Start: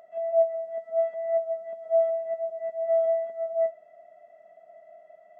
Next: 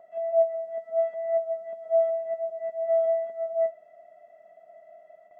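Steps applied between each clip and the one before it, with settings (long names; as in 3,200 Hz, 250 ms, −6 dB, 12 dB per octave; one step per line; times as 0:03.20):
noise gate with hold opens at −47 dBFS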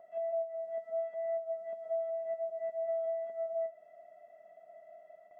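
downward compressor 6 to 1, threshold −29 dBFS, peak gain reduction 11.5 dB
level −3.5 dB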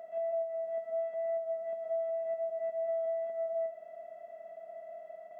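compressor on every frequency bin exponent 0.6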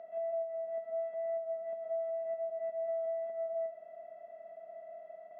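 high-frequency loss of the air 190 metres
level −1.5 dB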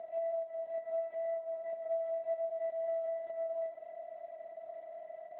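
level +4 dB
AMR narrowband 12.2 kbit/s 8,000 Hz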